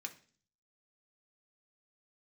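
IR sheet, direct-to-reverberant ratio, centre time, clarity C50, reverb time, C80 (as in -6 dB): 3.0 dB, 7 ms, 14.5 dB, 0.45 s, 19.5 dB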